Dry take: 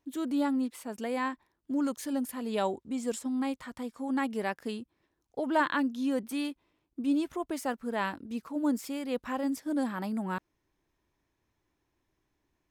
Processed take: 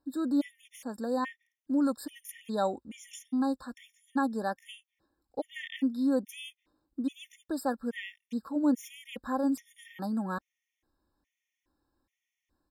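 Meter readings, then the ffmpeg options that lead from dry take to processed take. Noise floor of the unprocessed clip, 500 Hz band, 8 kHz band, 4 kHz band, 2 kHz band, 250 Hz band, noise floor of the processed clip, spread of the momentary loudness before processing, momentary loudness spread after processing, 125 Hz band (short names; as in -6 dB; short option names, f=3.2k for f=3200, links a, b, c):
-80 dBFS, -1.5 dB, -3.5 dB, -2.0 dB, -5.0 dB, 0.0 dB, under -85 dBFS, 9 LU, 16 LU, n/a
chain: -af "aecho=1:1:3.7:0.43,afftfilt=real='re*gt(sin(2*PI*1.2*pts/sr)*(1-2*mod(floor(b*sr/1024/1800),2)),0)':imag='im*gt(sin(2*PI*1.2*pts/sr)*(1-2*mod(floor(b*sr/1024/1800),2)),0)':win_size=1024:overlap=0.75"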